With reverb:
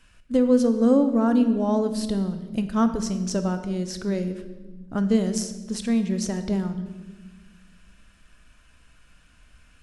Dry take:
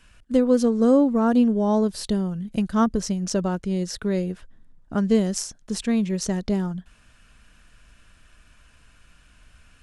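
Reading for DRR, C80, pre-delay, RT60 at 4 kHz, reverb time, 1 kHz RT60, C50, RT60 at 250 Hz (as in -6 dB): 8.5 dB, 12.0 dB, 3 ms, 1.0 s, 1.3 s, 1.1 s, 10.5 dB, 2.3 s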